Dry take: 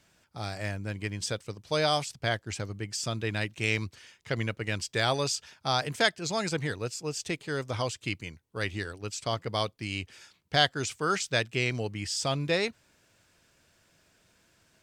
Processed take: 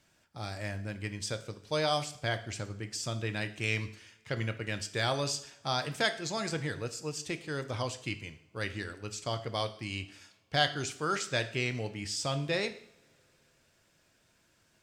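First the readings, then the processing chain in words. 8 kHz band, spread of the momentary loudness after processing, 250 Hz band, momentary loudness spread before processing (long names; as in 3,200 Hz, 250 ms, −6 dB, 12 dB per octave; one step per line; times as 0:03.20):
−3.5 dB, 10 LU, −3.0 dB, 10 LU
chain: coupled-rooms reverb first 0.58 s, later 3.2 s, from −27 dB, DRR 8.5 dB
in parallel at −5.5 dB: soft clipping −14 dBFS, distortion −20 dB
on the sum: level −7.5 dB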